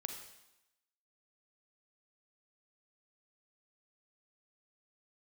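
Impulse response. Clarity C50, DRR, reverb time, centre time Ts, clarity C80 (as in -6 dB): 5.5 dB, 4.5 dB, 0.90 s, 28 ms, 8.0 dB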